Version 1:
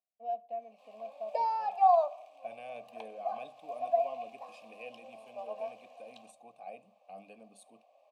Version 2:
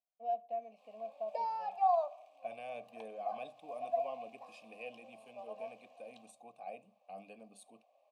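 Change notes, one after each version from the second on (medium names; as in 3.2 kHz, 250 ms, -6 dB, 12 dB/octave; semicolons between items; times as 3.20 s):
background -6.0 dB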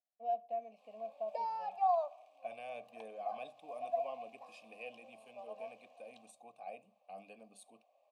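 second voice: add bass shelf 420 Hz -4.5 dB; background: send -7.0 dB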